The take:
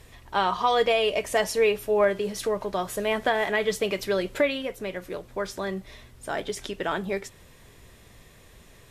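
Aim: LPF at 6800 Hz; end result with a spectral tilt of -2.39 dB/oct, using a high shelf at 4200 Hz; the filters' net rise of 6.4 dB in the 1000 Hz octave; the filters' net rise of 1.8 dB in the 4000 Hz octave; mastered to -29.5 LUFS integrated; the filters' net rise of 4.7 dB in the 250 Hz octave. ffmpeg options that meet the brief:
-af "lowpass=6.8k,equalizer=f=250:t=o:g=6,equalizer=f=1k:t=o:g=8,equalizer=f=4k:t=o:g=4.5,highshelf=f=4.2k:g=-4.5,volume=-6.5dB"

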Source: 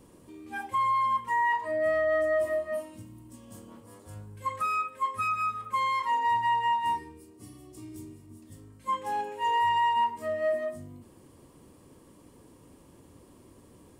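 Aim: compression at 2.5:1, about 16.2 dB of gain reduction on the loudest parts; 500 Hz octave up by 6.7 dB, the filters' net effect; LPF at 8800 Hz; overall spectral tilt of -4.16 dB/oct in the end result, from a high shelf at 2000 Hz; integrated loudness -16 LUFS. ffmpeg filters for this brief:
-af "lowpass=8.8k,equalizer=f=500:t=o:g=8.5,highshelf=f=2k:g=8.5,acompressor=threshold=-44dB:ratio=2.5,volume=23.5dB"

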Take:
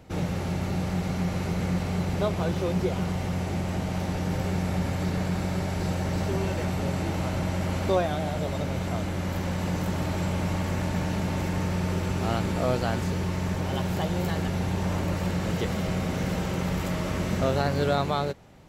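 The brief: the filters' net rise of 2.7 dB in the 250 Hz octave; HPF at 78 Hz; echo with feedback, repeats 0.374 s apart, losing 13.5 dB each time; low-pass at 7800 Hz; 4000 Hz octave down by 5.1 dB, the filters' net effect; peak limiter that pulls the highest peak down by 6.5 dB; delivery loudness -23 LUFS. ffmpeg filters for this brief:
-af "highpass=78,lowpass=7.8k,equalizer=f=250:t=o:g=4.5,equalizer=f=4k:t=o:g=-6.5,alimiter=limit=-16dB:level=0:latency=1,aecho=1:1:374|748:0.211|0.0444,volume=5dB"

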